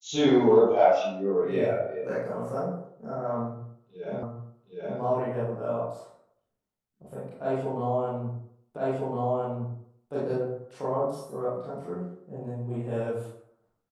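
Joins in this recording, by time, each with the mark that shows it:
4.23 s: repeat of the last 0.77 s
8.77 s: repeat of the last 1.36 s

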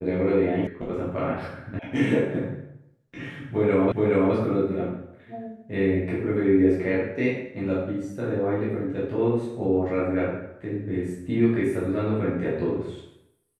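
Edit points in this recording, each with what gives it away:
0.67 s: sound stops dead
1.79 s: sound stops dead
3.92 s: repeat of the last 0.42 s

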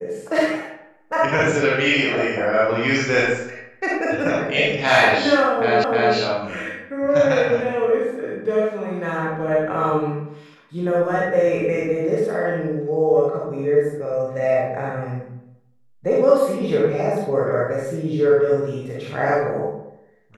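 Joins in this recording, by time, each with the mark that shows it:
5.84 s: repeat of the last 0.31 s

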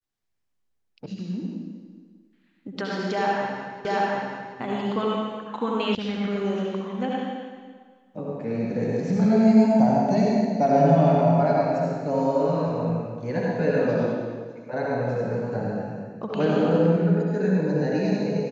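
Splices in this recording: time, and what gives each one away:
1.06 s: sound stops dead
3.85 s: repeat of the last 0.73 s
5.95 s: sound stops dead

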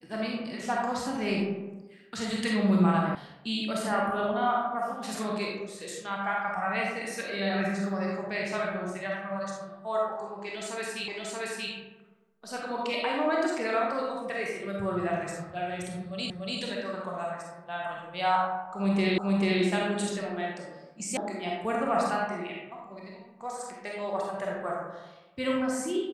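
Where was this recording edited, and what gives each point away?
3.15 s: sound stops dead
11.08 s: repeat of the last 0.63 s
16.30 s: repeat of the last 0.29 s
19.18 s: repeat of the last 0.44 s
21.17 s: sound stops dead

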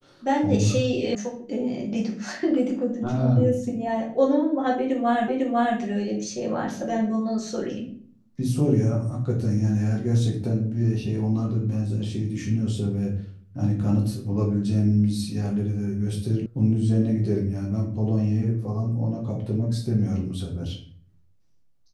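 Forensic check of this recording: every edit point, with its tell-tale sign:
1.15 s: sound stops dead
5.28 s: repeat of the last 0.5 s
16.46 s: sound stops dead

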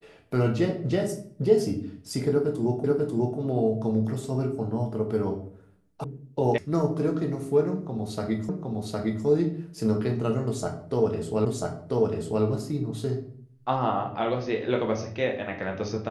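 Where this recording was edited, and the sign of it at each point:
2.84 s: repeat of the last 0.54 s
6.04 s: sound stops dead
6.58 s: sound stops dead
8.49 s: repeat of the last 0.76 s
11.45 s: repeat of the last 0.99 s

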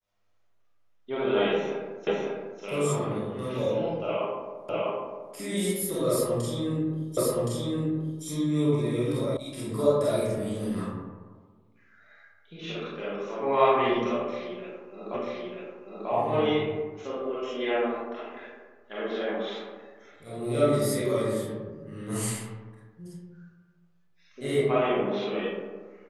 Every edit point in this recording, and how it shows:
2.07 s: repeat of the last 0.55 s
4.69 s: repeat of the last 0.65 s
7.17 s: repeat of the last 1.07 s
9.37 s: sound stops dead
15.14 s: repeat of the last 0.94 s

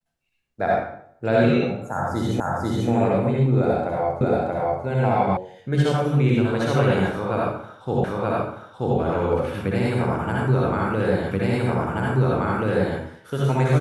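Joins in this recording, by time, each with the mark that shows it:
2.40 s: repeat of the last 0.49 s
4.21 s: repeat of the last 0.63 s
5.37 s: sound stops dead
8.04 s: repeat of the last 0.93 s
11.31 s: repeat of the last 1.68 s

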